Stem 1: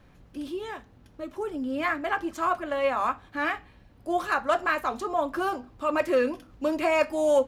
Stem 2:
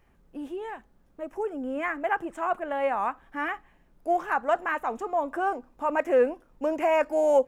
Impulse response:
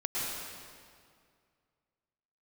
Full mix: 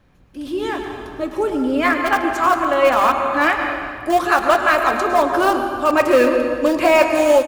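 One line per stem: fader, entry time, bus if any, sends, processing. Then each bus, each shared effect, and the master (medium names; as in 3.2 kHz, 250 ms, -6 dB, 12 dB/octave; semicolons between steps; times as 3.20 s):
-3.5 dB, 0.00 s, send -7 dB, level rider gain up to 4 dB
-5.0 dB, 16 ms, no send, graphic EQ 125/250/500/1000/2000/4000 Hz -12/-3/-8/-4/-10/+4 dB; bit crusher 5-bit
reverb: on, RT60 2.1 s, pre-delay 100 ms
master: level rider gain up to 9 dB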